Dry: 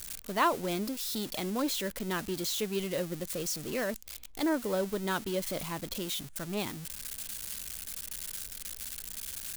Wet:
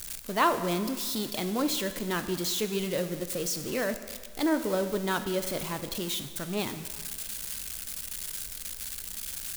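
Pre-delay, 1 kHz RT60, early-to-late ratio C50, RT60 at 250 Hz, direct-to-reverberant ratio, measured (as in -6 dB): 17 ms, 1.7 s, 10.5 dB, 1.5 s, 9.0 dB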